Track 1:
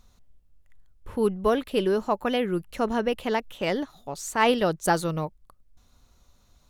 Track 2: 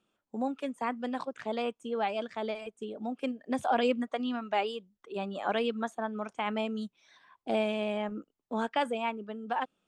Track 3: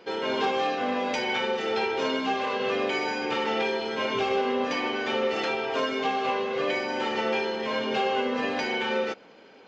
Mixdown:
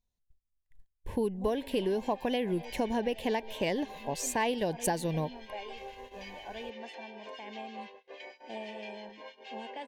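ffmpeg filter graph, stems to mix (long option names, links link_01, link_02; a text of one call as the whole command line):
ffmpeg -i stem1.wav -i stem2.wav -i stem3.wav -filter_complex "[0:a]volume=1dB[link_01];[1:a]adelay=1000,volume=-13.5dB[link_02];[2:a]highpass=620,highshelf=frequency=2000:gain=-2.5,acrossover=split=1600[link_03][link_04];[link_03]aeval=exprs='val(0)*(1-0.7/2+0.7/2*cos(2*PI*6.2*n/s))':channel_layout=same[link_05];[link_04]aeval=exprs='val(0)*(1-0.7/2-0.7/2*cos(2*PI*6.2*n/s))':channel_layout=same[link_06];[link_05][link_06]amix=inputs=2:normalize=0,adelay=1500,volume=-11.5dB[link_07];[link_01][link_02][link_07]amix=inputs=3:normalize=0,agate=range=-27dB:threshold=-46dB:ratio=16:detection=peak,asuperstop=centerf=1300:order=4:qfactor=2.3,acompressor=threshold=-27dB:ratio=6" out.wav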